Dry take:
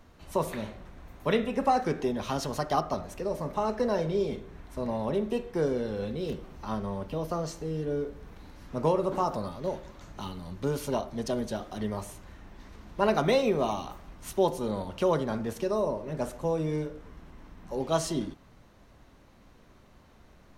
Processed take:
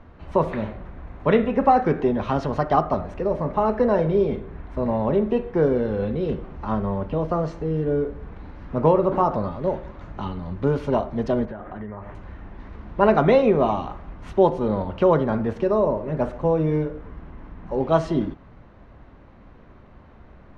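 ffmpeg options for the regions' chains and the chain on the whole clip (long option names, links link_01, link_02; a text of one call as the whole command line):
ffmpeg -i in.wav -filter_complex "[0:a]asettb=1/sr,asplit=3[link_01][link_02][link_03];[link_01]atrim=end=11.454[link_04];[link_02]atrim=start=11.45:end=12.15,asetpts=PTS-STARTPTS,afade=type=in:duration=0.004:curve=qsin,afade=type=out:start_time=0.696:duration=0.004:curve=qsin,lowpass=frequency=1800:width_type=q:width=1.8,acompressor=threshold=-39dB:ratio=6:attack=3.2:release=140:knee=1:detection=peak[link_05];[link_03]atrim=start=12.146[link_06];[link_04][link_05]acrossfade=duration=0.004:curve1=hsin:curve2=qsin[link_07];[link_07][link_06]acrossfade=duration=0.004:curve1=qsin:curve2=hsin,lowpass=2000,equalizer=frequency=65:width_type=o:width=1.6:gain=3,volume=8dB" out.wav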